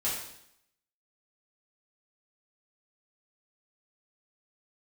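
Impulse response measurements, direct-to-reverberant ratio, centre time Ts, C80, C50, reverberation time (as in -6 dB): -8.5 dB, 49 ms, 5.5 dB, 2.5 dB, 0.75 s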